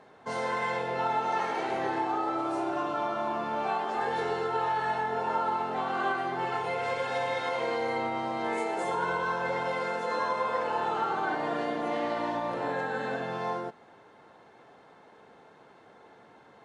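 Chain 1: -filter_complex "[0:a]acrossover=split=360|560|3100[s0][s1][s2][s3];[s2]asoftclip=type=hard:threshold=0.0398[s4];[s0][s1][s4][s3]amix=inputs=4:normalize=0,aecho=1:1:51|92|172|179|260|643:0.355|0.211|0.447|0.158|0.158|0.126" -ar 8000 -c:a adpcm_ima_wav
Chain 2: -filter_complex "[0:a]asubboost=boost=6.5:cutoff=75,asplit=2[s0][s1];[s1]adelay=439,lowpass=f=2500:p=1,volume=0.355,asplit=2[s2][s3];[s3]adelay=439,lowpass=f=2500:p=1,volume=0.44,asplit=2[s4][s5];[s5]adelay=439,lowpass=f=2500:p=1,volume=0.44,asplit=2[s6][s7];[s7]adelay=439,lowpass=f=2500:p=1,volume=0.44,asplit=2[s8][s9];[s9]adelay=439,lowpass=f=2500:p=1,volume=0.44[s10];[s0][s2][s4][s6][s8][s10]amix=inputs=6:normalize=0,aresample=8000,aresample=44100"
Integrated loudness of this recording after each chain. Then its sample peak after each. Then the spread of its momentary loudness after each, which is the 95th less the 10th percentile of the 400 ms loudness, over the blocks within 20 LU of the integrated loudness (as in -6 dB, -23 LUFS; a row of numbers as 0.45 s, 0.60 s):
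-29.0 LUFS, -30.5 LUFS; -16.5 dBFS, -17.5 dBFS; 3 LU, 4 LU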